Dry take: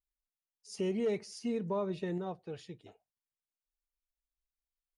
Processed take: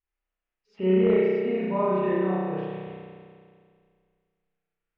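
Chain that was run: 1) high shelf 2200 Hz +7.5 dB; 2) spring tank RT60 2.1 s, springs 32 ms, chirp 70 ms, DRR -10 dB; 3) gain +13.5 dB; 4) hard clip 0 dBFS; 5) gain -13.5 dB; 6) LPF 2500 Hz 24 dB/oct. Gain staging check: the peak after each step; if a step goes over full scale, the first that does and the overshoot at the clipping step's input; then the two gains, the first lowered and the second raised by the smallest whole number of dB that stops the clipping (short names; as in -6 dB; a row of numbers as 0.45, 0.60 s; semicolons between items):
-24.0, -9.5, +4.0, 0.0, -13.5, -13.0 dBFS; step 3, 4.0 dB; step 3 +9.5 dB, step 5 -9.5 dB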